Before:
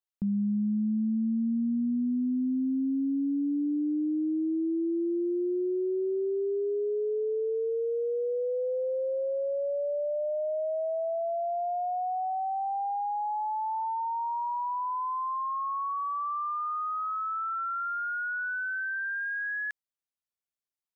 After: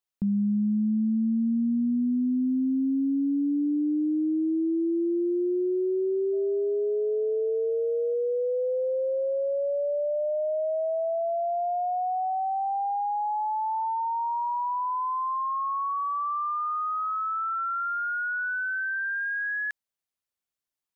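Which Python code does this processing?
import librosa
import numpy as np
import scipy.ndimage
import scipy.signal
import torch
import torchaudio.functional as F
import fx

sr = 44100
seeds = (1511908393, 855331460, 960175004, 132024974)

y = fx.dmg_tone(x, sr, hz=640.0, level_db=-50.0, at=(6.32, 8.13), fade=0.02)
y = F.gain(torch.from_numpy(y), 3.0).numpy()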